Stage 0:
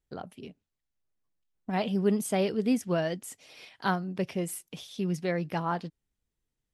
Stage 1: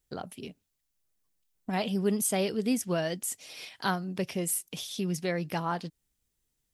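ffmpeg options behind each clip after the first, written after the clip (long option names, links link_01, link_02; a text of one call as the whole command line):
ffmpeg -i in.wav -filter_complex "[0:a]highshelf=frequency=4300:gain=11.5,asplit=2[link_01][link_02];[link_02]acompressor=threshold=-35dB:ratio=6,volume=0dB[link_03];[link_01][link_03]amix=inputs=2:normalize=0,volume=-4dB" out.wav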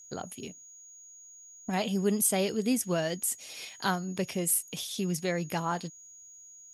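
ffmpeg -i in.wav -af "crystalizer=i=0.5:c=0,aeval=exprs='val(0)+0.00355*sin(2*PI*6700*n/s)':channel_layout=same" out.wav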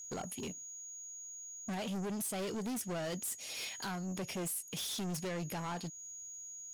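ffmpeg -i in.wav -af "alimiter=level_in=1dB:limit=-24dB:level=0:latency=1:release=348,volume=-1dB,asoftclip=type=tanh:threshold=-39.5dB,volume=4dB" out.wav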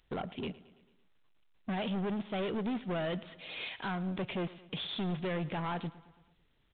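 ffmpeg -i in.wav -af "aecho=1:1:111|222|333|444|555:0.112|0.0628|0.0352|0.0197|0.011,volume=4dB" -ar 8000 -c:a pcm_mulaw out.wav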